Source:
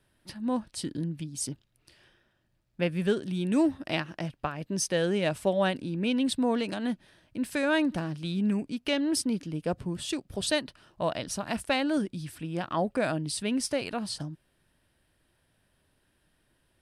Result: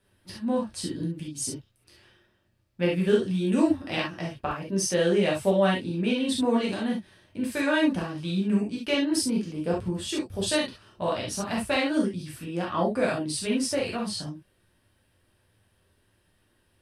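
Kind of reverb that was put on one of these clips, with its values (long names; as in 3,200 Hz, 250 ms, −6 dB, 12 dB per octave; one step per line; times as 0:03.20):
reverb whose tail is shaped and stops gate 90 ms flat, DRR −4 dB
level −2.5 dB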